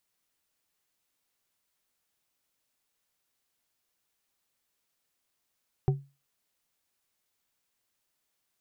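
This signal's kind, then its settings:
struck glass bar, lowest mode 139 Hz, modes 3, decay 0.29 s, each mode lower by 6.5 dB, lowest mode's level −18 dB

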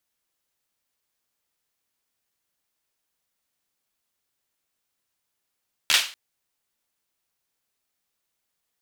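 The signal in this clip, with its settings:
synth clap length 0.24 s, apart 13 ms, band 2,900 Hz, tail 0.36 s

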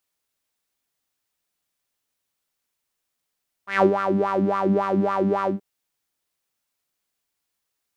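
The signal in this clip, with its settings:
subtractive patch with filter wobble G3, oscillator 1 saw, oscillator 2 level −17 dB, filter bandpass, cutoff 500 Hz, Q 5.8, filter envelope 1 octave, filter decay 0.42 s, filter sustain 10%, attack 151 ms, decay 0.09 s, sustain −8 dB, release 0.13 s, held 1.80 s, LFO 3.6 Hz, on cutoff 1.2 octaves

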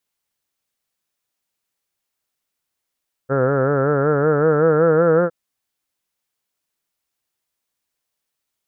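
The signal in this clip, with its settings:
vowel by formant synthesis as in heard, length 2.01 s, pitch 131 Hz, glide +4.5 semitones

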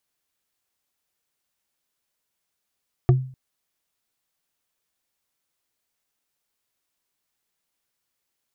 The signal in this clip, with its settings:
struck wood, length 0.25 s, lowest mode 130 Hz, decay 0.44 s, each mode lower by 6 dB, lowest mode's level −9.5 dB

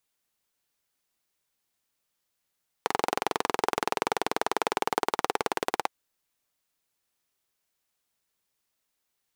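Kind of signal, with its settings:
pulse-train model of a single-cylinder engine, changing speed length 3.05 s, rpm 2,700, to 2,100, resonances 440/800 Hz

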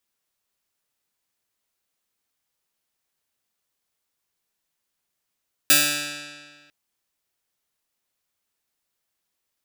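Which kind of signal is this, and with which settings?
Karplus-Strong string D3, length 1.00 s, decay 1.69 s, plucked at 0.14, bright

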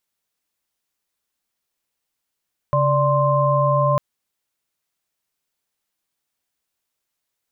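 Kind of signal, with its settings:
held notes C#3/D5/C6 sine, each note −19 dBFS 1.25 s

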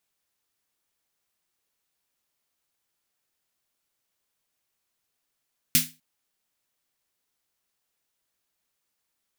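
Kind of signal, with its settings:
synth snare length 0.25 s, tones 160 Hz, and 250 Hz, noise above 1,900 Hz, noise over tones 11 dB, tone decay 0.29 s, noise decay 0.26 s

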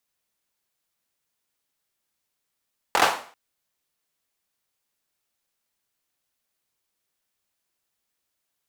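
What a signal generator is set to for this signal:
synth clap length 0.39 s, bursts 4, apart 23 ms, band 890 Hz, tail 0.44 s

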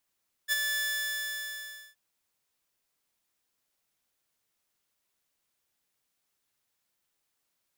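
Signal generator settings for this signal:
note with an ADSR envelope saw 1,740 Hz, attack 41 ms, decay 25 ms, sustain −5 dB, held 0.29 s, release 1,180 ms −20.5 dBFS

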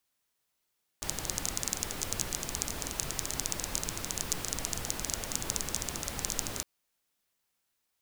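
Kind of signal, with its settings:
rain-like ticks over hiss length 5.61 s, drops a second 16, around 6,600 Hz, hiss −0.5 dB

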